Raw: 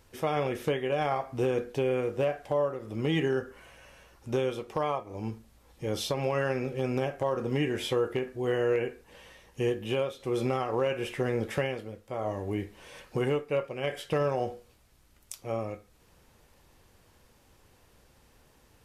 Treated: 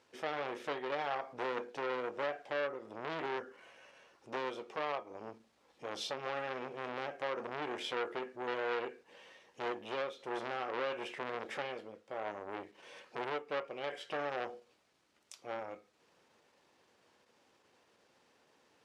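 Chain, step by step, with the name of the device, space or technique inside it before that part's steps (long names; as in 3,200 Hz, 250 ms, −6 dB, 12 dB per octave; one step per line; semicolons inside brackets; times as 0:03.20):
public-address speaker with an overloaded transformer (saturating transformer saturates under 1,600 Hz; band-pass filter 280–6,000 Hz)
level −4 dB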